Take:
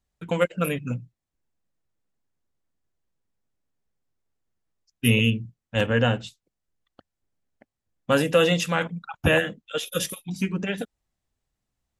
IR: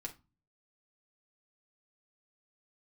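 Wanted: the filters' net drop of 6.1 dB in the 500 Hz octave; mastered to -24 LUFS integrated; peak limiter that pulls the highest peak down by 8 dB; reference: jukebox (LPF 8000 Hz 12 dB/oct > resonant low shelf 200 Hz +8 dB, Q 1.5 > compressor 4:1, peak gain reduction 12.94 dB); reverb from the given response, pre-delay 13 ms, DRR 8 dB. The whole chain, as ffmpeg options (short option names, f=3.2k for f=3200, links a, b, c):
-filter_complex "[0:a]equalizer=f=500:t=o:g=-5.5,alimiter=limit=-14.5dB:level=0:latency=1,asplit=2[a][b];[1:a]atrim=start_sample=2205,adelay=13[c];[b][c]afir=irnorm=-1:irlink=0,volume=-5.5dB[d];[a][d]amix=inputs=2:normalize=0,lowpass=8k,lowshelf=f=200:t=q:w=1.5:g=8,acompressor=threshold=-29dB:ratio=4,volume=9dB"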